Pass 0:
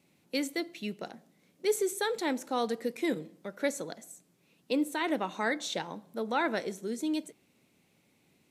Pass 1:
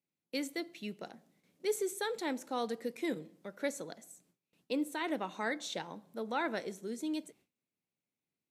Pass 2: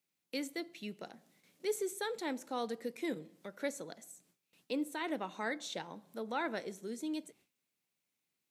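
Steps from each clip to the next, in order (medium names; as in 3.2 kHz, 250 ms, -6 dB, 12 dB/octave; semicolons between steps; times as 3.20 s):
gate with hold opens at -55 dBFS; trim -5 dB
tape noise reduction on one side only encoder only; trim -2 dB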